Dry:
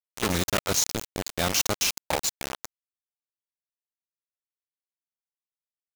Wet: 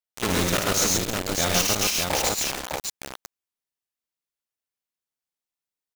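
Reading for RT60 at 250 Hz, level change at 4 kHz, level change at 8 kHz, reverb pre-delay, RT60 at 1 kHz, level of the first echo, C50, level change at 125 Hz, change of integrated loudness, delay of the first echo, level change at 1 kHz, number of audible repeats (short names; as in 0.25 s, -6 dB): none, +4.0 dB, +4.0 dB, none, none, -5.5 dB, none, +4.0 dB, +3.5 dB, 54 ms, +4.0 dB, 4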